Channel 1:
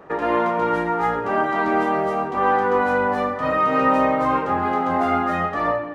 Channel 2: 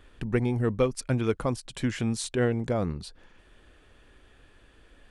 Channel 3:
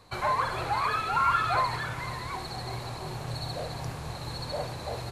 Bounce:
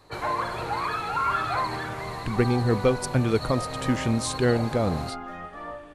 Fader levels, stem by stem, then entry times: −16.0, +3.0, −1.0 decibels; 0.00, 2.05, 0.00 seconds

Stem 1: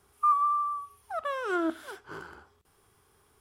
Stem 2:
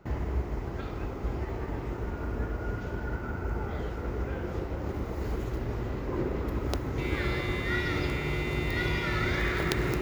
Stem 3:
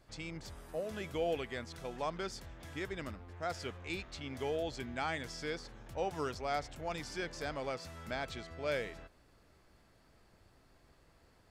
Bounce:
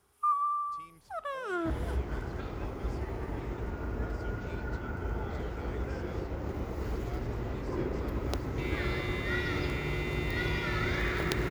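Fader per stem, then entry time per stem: −4.5, −2.5, −14.0 decibels; 0.00, 1.60, 0.60 seconds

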